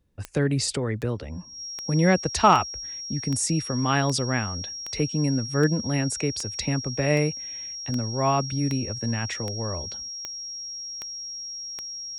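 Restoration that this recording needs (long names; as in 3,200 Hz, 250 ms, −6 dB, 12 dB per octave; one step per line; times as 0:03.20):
click removal
notch filter 5,600 Hz, Q 30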